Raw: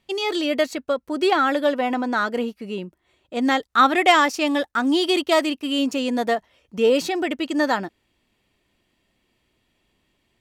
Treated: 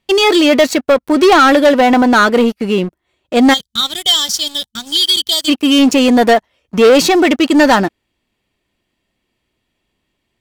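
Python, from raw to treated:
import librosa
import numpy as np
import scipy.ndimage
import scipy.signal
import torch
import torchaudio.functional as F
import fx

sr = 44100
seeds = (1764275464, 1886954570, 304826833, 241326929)

y = fx.spec_box(x, sr, start_s=3.54, length_s=1.95, low_hz=220.0, high_hz=3000.0, gain_db=-26)
y = fx.leveller(y, sr, passes=3)
y = F.gain(torch.from_numpy(y), 4.5).numpy()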